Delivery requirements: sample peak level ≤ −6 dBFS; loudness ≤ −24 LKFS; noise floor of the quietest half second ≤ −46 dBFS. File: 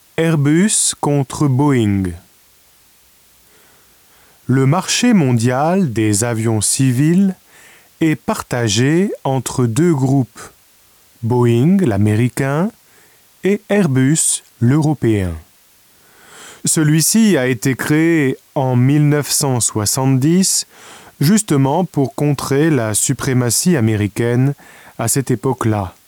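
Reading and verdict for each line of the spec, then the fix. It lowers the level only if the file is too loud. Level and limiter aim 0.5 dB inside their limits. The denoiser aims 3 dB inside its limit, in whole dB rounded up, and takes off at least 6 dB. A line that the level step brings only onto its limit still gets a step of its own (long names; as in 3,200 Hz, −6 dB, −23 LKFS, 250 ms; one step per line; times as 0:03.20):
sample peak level −5.0 dBFS: out of spec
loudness −15.0 LKFS: out of spec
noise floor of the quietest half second −50 dBFS: in spec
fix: level −9.5 dB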